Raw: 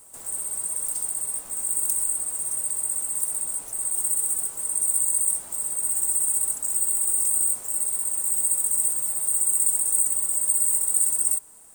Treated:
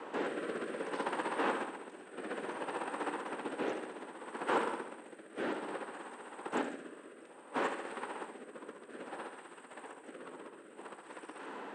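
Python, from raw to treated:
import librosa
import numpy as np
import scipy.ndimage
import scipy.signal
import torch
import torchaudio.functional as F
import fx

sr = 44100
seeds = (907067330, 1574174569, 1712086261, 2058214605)

y = fx.over_compress(x, sr, threshold_db=-33.0, ratio=-1.0)
y = fx.echo_feedback(y, sr, ms=73, feedback_pct=58, wet_db=-8.5)
y = fx.rotary(y, sr, hz=0.6)
y = fx.cabinet(y, sr, low_hz=260.0, low_slope=24, high_hz=2500.0, hz=(670.0, 1200.0, 2200.0), db=(-9, -4, -6))
y = F.gain(torch.from_numpy(y), 17.0).numpy()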